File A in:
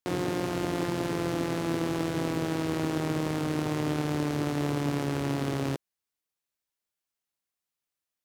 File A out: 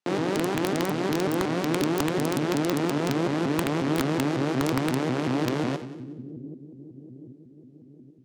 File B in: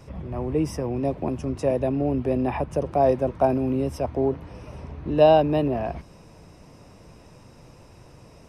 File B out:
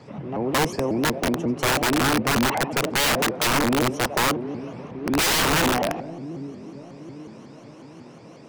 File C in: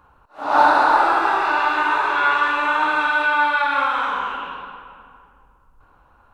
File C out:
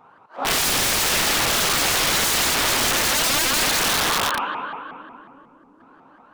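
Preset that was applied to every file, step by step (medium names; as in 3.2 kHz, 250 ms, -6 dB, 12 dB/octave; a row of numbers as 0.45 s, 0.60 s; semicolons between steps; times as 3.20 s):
high-pass 150 Hz 24 dB/octave; in parallel at -3 dB: saturation -19 dBFS; on the sum: distance through air 66 m; on a send: two-band feedback delay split 360 Hz, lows 780 ms, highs 92 ms, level -12 dB; on the sum: integer overflow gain 15.5 dB; vibrato with a chosen wave saw up 5.5 Hz, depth 250 cents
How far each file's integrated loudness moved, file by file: +4.0 LU, +1.5 LU, -0.5 LU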